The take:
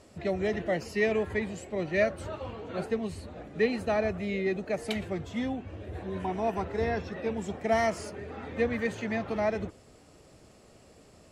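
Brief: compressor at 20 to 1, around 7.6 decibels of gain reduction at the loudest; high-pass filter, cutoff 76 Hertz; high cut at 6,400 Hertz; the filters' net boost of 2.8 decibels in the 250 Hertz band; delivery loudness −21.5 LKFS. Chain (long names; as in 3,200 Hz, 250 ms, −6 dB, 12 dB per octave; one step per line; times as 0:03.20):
high-pass filter 76 Hz
low-pass filter 6,400 Hz
parametric band 250 Hz +3.5 dB
downward compressor 20 to 1, threshold −27 dBFS
level +12.5 dB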